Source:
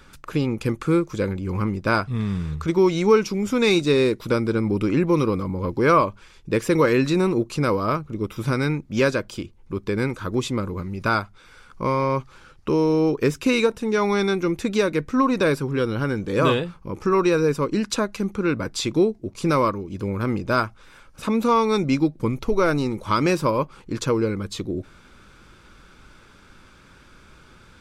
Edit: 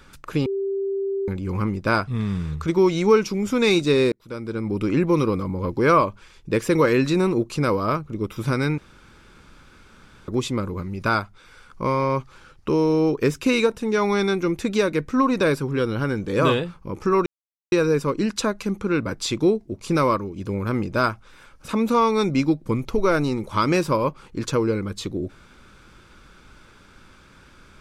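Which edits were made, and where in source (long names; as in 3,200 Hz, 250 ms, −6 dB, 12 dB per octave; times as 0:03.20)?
0:00.46–0:01.28: beep over 392 Hz −22 dBFS
0:04.12–0:04.96: fade in
0:08.78–0:10.28: fill with room tone
0:17.26: splice in silence 0.46 s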